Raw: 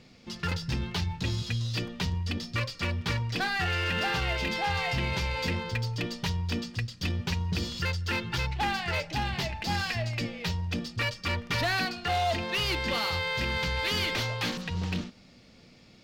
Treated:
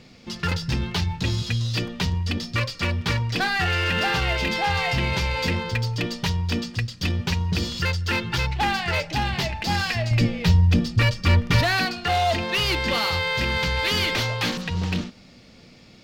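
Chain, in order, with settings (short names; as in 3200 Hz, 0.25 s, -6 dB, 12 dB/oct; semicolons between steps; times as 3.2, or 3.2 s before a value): 10.11–11.61 low shelf 240 Hz +11.5 dB; gain +6 dB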